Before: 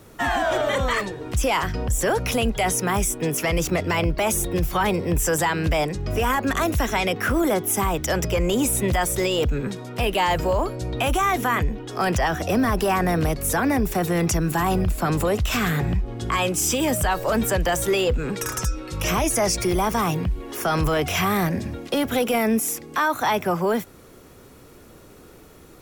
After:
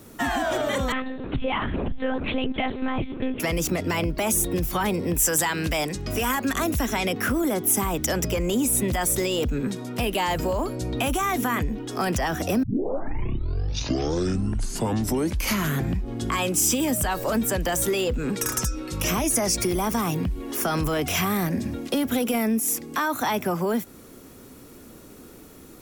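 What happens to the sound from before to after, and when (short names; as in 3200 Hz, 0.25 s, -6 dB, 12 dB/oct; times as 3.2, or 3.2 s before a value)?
0.92–3.4 monotone LPC vocoder at 8 kHz 260 Hz
5.14–6.56 tilt shelf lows -3.5 dB
12.63 tape start 3.36 s
whole clip: bell 250 Hz +8 dB 0.77 oct; compressor 3:1, threshold -20 dBFS; high shelf 5300 Hz +7.5 dB; gain -2 dB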